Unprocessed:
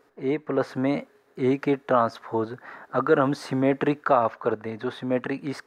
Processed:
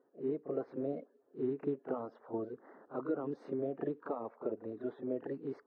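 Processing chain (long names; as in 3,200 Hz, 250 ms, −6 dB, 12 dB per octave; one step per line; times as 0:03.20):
spectral magnitudes quantised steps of 30 dB
downward compressor, threshold −23 dBFS, peak gain reduction 9 dB
resonant band-pass 380 Hz, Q 1.6
on a send: backwards echo 35 ms −10.5 dB
on the sum: level −5.5 dB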